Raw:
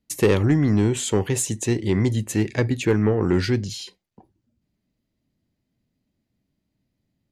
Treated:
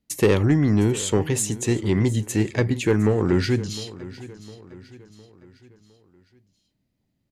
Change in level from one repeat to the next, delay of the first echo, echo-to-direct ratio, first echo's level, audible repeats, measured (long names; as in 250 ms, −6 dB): −6.5 dB, 708 ms, −16.5 dB, −17.5 dB, 3